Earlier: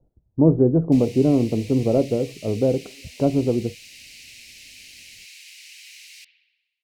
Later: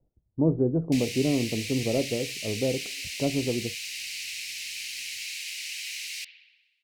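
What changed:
speech −7.5 dB
background +8.5 dB

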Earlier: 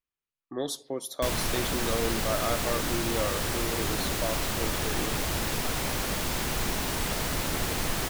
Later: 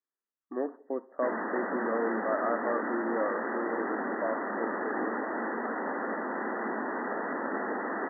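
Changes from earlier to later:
background: send on
master: add linear-phase brick-wall band-pass 200–2,000 Hz

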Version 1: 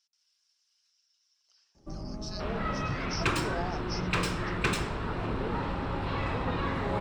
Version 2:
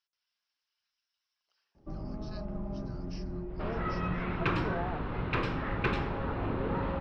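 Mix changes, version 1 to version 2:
second sound: entry +1.20 s
master: add high-frequency loss of the air 310 metres

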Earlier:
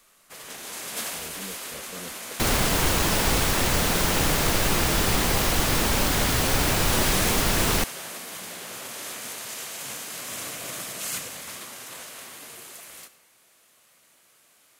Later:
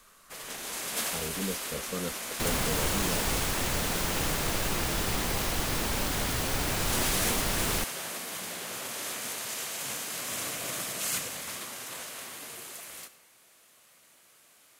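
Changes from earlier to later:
speech +7.5 dB
second sound −7.5 dB

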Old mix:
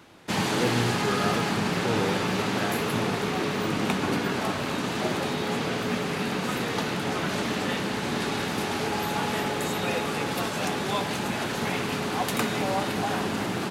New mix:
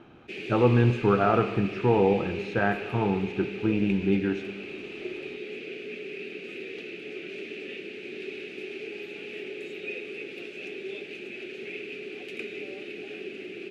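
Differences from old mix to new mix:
speech +8.0 dB
background: add pair of resonant band-passes 980 Hz, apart 2.7 octaves

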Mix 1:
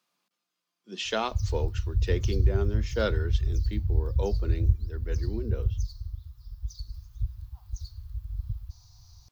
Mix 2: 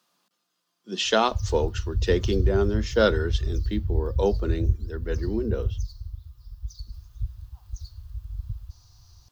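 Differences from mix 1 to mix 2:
speech +8.0 dB
master: add parametric band 2,300 Hz −7 dB 0.35 octaves

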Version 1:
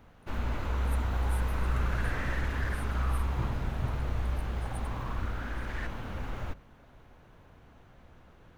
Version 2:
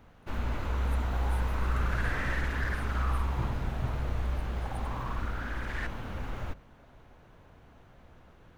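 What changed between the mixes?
speech −6.5 dB
second sound +3.5 dB

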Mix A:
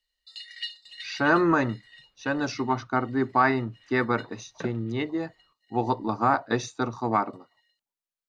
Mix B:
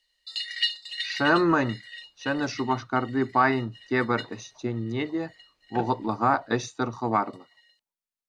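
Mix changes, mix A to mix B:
first sound +9.5 dB
second sound: entry +1.15 s

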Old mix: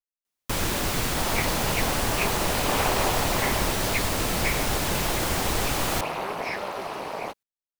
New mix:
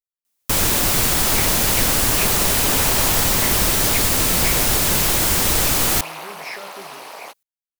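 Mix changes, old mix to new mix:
first sound +5.0 dB
second sound: add high-pass filter 1,000 Hz 6 dB per octave
master: add high-shelf EQ 5,600 Hz +10 dB

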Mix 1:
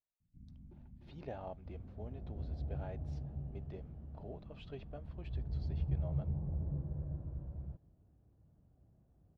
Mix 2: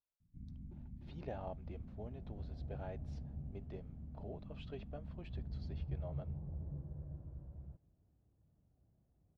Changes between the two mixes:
first sound +5.0 dB
second sound −6.5 dB

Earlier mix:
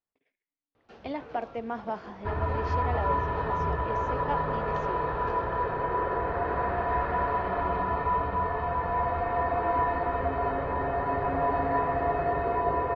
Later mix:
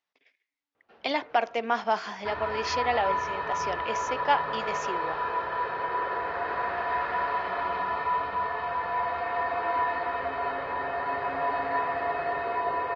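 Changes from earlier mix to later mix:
speech +9.5 dB
first sound: add head-to-tape spacing loss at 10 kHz 44 dB
master: add spectral tilt +4.5 dB per octave

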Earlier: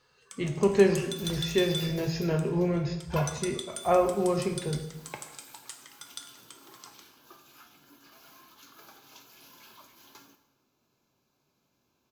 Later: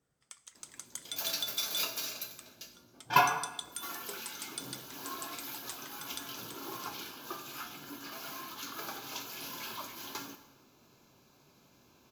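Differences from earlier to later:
speech: muted
first sound: send −11.5 dB
second sound +11.5 dB

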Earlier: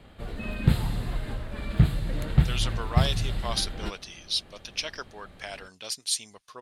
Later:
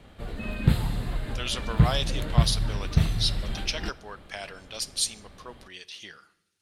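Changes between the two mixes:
speech: entry −1.10 s
reverb: on, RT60 0.95 s

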